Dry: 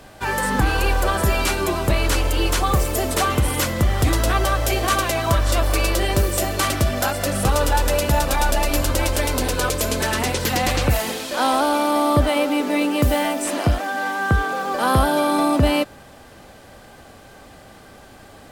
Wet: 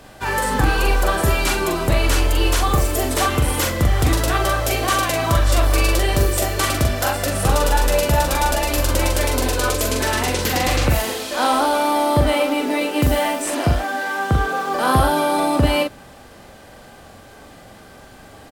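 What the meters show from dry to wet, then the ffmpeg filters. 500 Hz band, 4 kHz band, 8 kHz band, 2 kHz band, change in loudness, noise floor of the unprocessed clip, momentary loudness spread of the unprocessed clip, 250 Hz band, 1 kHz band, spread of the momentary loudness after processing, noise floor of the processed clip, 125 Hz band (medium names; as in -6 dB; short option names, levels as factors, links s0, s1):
+1.5 dB, +1.5 dB, +1.5 dB, +1.5 dB, +1.5 dB, -45 dBFS, 3 LU, 0.0 dB, +1.5 dB, 3 LU, -43 dBFS, +1.5 dB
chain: -filter_complex "[0:a]asplit=2[s0][s1];[s1]adelay=43,volume=0.631[s2];[s0][s2]amix=inputs=2:normalize=0"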